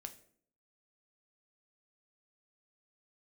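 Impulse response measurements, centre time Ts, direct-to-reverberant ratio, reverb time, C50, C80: 7 ms, 6.5 dB, 0.60 s, 14.0 dB, 18.0 dB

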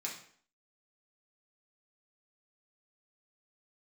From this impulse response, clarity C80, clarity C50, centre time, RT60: 10.0 dB, 6.0 dB, 28 ms, 0.55 s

